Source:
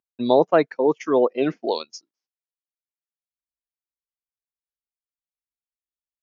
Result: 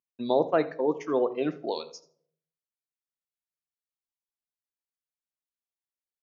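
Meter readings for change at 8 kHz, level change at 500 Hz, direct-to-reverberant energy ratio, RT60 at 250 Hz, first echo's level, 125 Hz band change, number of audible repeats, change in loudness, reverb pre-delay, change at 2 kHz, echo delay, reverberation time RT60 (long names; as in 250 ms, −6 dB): can't be measured, −7.0 dB, 10.5 dB, 0.75 s, −20.0 dB, −6.5 dB, 1, −7.0 dB, 4 ms, −7.0 dB, 82 ms, 0.60 s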